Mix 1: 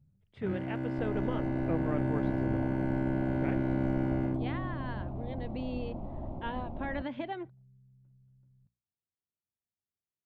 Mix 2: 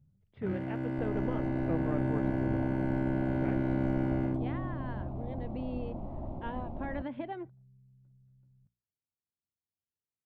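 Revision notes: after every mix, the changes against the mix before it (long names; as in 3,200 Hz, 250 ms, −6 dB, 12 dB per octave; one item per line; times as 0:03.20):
speech: add head-to-tape spacing loss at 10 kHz 26 dB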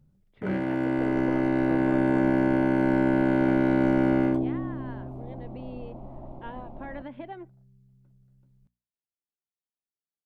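first sound +11.5 dB
master: add parametric band 100 Hz −13.5 dB 1.4 octaves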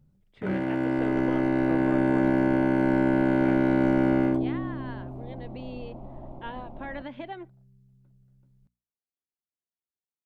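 speech: remove head-to-tape spacing loss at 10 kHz 26 dB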